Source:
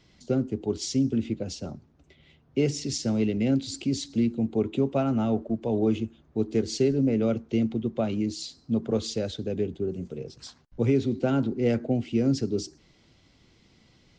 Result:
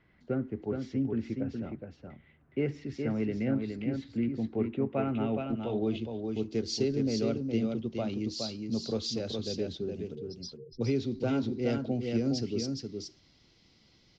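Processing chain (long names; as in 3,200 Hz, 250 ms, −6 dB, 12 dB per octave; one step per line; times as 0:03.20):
0:10.15–0:10.81: expanding power law on the bin magnitudes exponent 2.5
single-tap delay 416 ms −5 dB
low-pass filter sweep 1,800 Hz → 5,100 Hz, 0:04.74–0:06.33
level −6.5 dB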